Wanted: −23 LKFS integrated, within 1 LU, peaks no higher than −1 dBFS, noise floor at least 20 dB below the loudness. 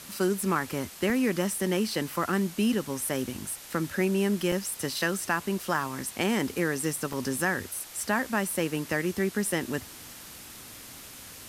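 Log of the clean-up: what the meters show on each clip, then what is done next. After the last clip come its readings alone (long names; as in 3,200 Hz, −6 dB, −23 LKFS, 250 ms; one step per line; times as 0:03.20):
number of dropouts 5; longest dropout 1.6 ms; background noise floor −46 dBFS; target noise floor −49 dBFS; integrated loudness −29.0 LKFS; sample peak −12.0 dBFS; target loudness −23.0 LKFS
→ repair the gap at 0:01.10/0:04.01/0:04.52/0:05.76/0:07.13, 1.6 ms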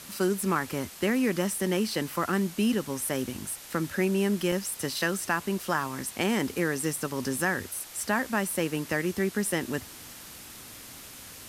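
number of dropouts 0; background noise floor −46 dBFS; target noise floor −49 dBFS
→ noise reduction from a noise print 6 dB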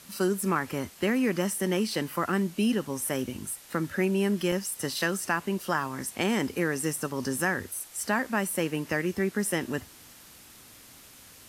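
background noise floor −51 dBFS; integrated loudness −29.0 LKFS; sample peak −12.0 dBFS; target loudness −23.0 LKFS
→ level +6 dB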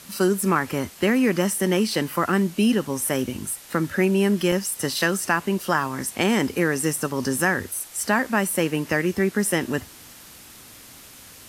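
integrated loudness −23.0 LKFS; sample peak −6.0 dBFS; background noise floor −45 dBFS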